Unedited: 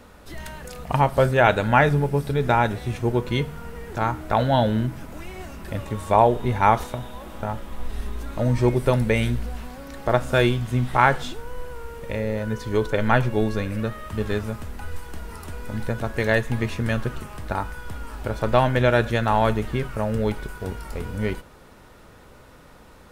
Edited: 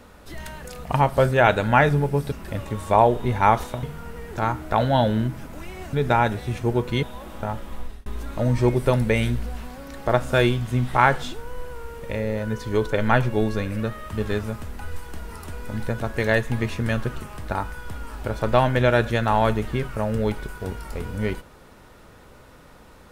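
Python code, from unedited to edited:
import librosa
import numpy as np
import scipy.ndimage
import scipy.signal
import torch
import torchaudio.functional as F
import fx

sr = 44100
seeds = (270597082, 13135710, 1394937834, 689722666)

y = fx.edit(x, sr, fx.swap(start_s=2.32, length_s=1.1, other_s=5.52, other_length_s=1.51),
    fx.fade_out_span(start_s=7.76, length_s=0.3), tone=tone)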